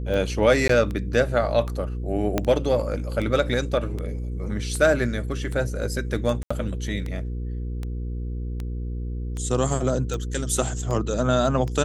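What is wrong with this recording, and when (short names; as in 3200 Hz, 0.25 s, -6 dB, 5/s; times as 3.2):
hum 60 Hz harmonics 8 -29 dBFS
tick 78 rpm -19 dBFS
0.68–0.69 gap 13 ms
2.38 pop -8 dBFS
6.43–6.5 gap 75 ms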